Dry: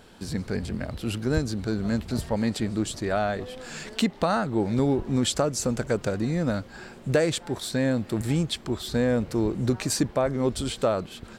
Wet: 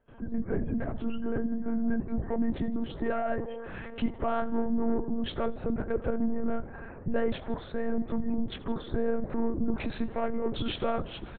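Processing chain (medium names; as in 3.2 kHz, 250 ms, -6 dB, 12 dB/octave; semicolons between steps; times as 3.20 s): gate with hold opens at -41 dBFS; Bessel low-pass 1.5 kHz, order 2, from 9.71 s 6.8 kHz; spectral gate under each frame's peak -30 dB strong; peak limiter -20 dBFS, peak gain reduction 9 dB; saturation -21.5 dBFS, distortion -20 dB; flange 0.62 Hz, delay 7.2 ms, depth 6.8 ms, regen -48%; frequency-shifting echo 82 ms, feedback 58%, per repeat +69 Hz, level -20 dB; monotone LPC vocoder at 8 kHz 230 Hz; trim +5.5 dB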